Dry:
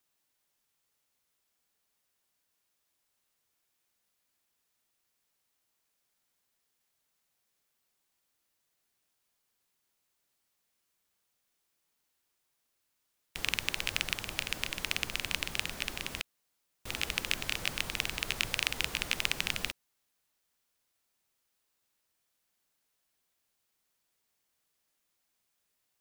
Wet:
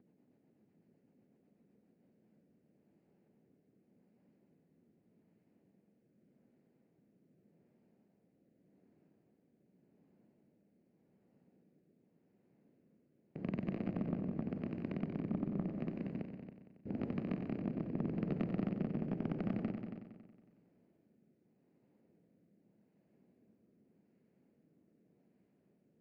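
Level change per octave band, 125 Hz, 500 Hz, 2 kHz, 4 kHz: +7.0 dB, +4.0 dB, −23.5 dB, below −30 dB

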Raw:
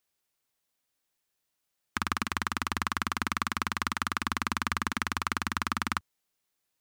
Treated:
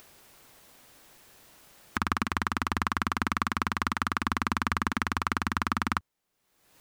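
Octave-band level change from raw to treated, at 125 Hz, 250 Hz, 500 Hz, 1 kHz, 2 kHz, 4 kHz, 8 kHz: +4.5, +4.5, +4.0, +2.5, +1.0, −2.0, −3.0 decibels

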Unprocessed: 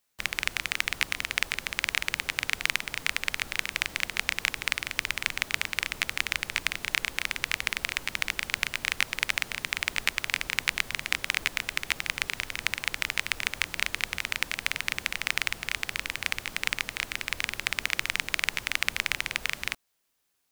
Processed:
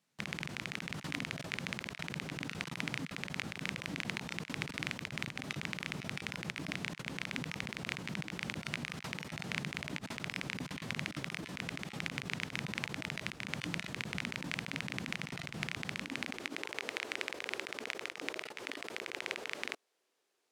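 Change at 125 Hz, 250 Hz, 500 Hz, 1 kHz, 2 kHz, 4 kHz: +4.5, +6.0, −0.5, −8.0, −11.5, −12.0 decibels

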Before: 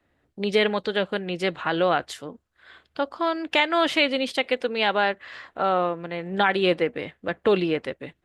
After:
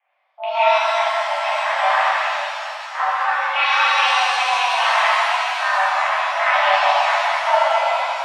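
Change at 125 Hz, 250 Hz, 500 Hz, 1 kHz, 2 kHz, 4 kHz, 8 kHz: below −40 dB, below −40 dB, +1.0 dB, +11.5 dB, +9.0 dB, +6.0 dB, +12.0 dB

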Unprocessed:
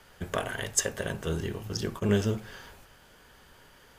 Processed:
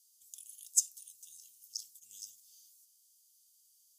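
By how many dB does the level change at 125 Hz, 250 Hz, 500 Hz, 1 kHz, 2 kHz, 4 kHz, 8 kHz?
below −40 dB, below −40 dB, below −40 dB, below −40 dB, below −40 dB, −9.5 dB, −1.0 dB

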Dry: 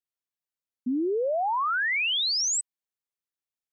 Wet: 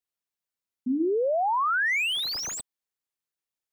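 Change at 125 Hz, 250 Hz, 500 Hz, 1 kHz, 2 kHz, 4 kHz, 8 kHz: can't be measured, +1.0 dB, +1.5 dB, +1.5 dB, +1.0 dB, −3.0 dB, −7.5 dB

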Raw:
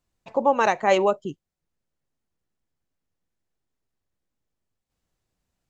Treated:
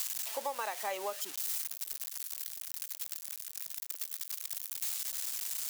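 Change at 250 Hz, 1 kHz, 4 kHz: below −25 dB, −15.5 dB, −1.0 dB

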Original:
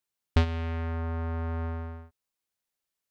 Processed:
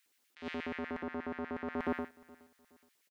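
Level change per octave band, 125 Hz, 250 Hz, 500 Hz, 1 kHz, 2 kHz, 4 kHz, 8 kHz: −26.0 dB, −2.0 dB, −2.0 dB, −4.0 dB, −1.0 dB, −8.5 dB, can't be measured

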